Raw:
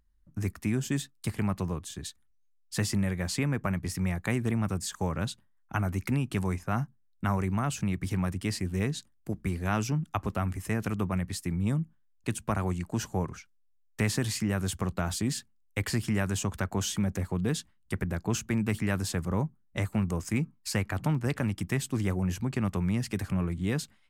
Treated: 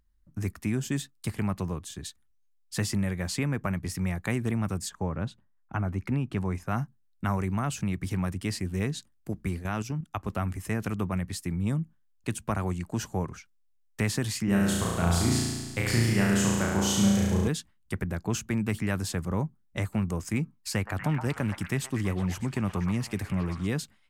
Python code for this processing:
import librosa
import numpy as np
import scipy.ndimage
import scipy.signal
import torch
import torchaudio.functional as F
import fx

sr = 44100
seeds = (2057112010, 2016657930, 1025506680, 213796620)

y = fx.lowpass(x, sr, hz=fx.line((4.88, 1100.0), (6.54, 2100.0)), slope=6, at=(4.88, 6.54), fade=0.02)
y = fx.level_steps(y, sr, step_db=10, at=(9.59, 10.28))
y = fx.room_flutter(y, sr, wall_m=6.0, rt60_s=1.4, at=(14.44, 17.48))
y = fx.echo_stepped(y, sr, ms=121, hz=1000.0, octaves=0.7, feedback_pct=70, wet_db=-2.5, at=(20.73, 23.67))